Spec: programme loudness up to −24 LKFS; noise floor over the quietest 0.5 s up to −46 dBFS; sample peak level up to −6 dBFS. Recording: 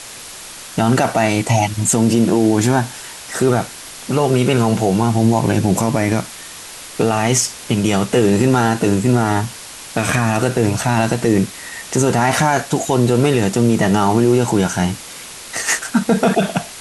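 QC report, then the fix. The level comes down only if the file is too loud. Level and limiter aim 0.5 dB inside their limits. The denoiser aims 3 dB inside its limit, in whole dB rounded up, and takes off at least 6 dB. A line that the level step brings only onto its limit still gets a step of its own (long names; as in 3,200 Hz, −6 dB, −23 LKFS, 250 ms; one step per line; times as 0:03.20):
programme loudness −16.5 LKFS: out of spec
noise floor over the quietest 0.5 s −34 dBFS: out of spec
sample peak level −4.0 dBFS: out of spec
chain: broadband denoise 7 dB, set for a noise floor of −34 dBFS
level −8 dB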